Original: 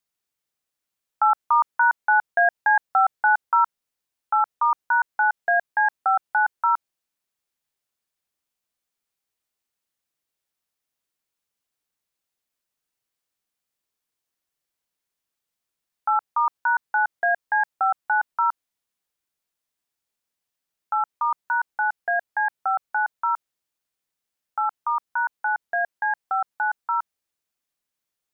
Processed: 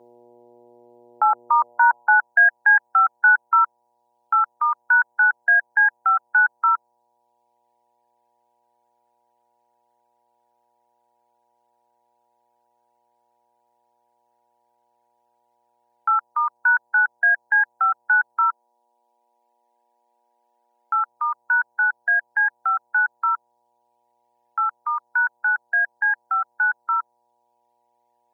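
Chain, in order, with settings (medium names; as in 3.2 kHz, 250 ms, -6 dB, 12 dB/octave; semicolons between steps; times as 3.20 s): reverb removal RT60 1.4 s; mains buzz 120 Hz, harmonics 8, -51 dBFS -5 dB/octave; 18.47–21.08 s: hum notches 60/120 Hz; high-pass sweep 410 Hz -> 1.5 kHz, 1.49–2.33 s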